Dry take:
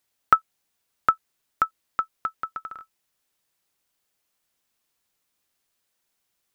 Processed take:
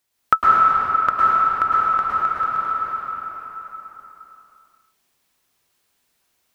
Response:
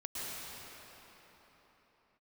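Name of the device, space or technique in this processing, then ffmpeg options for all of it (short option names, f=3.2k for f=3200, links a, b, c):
cathedral: -filter_complex "[1:a]atrim=start_sample=2205[a];[0:a][a]afir=irnorm=-1:irlink=0,volume=6.5dB"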